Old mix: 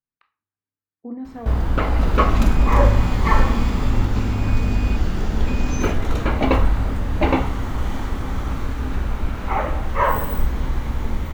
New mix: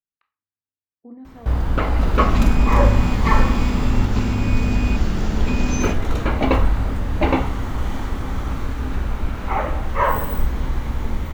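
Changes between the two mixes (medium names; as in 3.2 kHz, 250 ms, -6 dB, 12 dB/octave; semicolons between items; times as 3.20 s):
speech -8.0 dB; second sound +4.5 dB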